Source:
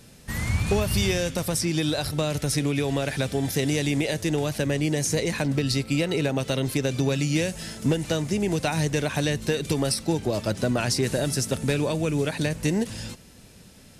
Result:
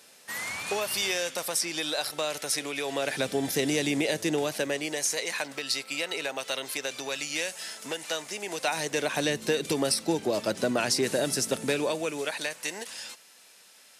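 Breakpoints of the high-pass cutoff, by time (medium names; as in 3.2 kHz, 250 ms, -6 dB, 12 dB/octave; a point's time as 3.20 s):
2.80 s 600 Hz
3.27 s 260 Hz
4.30 s 260 Hz
5.15 s 770 Hz
8.41 s 770 Hz
9.30 s 270 Hz
11.59 s 270 Hz
12.58 s 870 Hz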